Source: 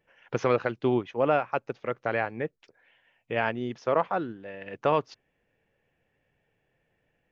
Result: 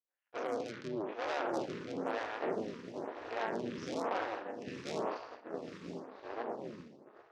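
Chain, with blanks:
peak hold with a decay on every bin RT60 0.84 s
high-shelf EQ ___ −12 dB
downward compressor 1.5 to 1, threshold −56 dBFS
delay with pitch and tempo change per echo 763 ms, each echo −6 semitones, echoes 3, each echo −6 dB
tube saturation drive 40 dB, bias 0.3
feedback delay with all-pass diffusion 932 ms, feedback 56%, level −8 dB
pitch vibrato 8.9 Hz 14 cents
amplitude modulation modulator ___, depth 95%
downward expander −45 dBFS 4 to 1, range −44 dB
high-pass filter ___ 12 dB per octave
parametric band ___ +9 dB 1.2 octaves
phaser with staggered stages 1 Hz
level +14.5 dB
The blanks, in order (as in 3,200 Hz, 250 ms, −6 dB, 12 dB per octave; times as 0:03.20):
2,800 Hz, 220 Hz, 210 Hz, 5,800 Hz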